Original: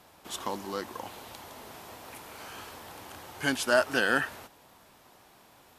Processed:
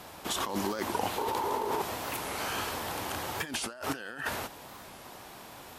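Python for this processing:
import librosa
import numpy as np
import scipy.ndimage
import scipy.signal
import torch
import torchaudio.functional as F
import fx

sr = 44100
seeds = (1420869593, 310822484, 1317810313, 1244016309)

y = fx.small_body(x, sr, hz=(420.0, 900.0), ring_ms=25, db=17, at=(1.18, 1.82))
y = fx.over_compress(y, sr, threshold_db=-39.0, ratio=-1.0)
y = fx.record_warp(y, sr, rpm=45.0, depth_cents=160.0)
y = F.gain(torch.from_numpy(y), 4.5).numpy()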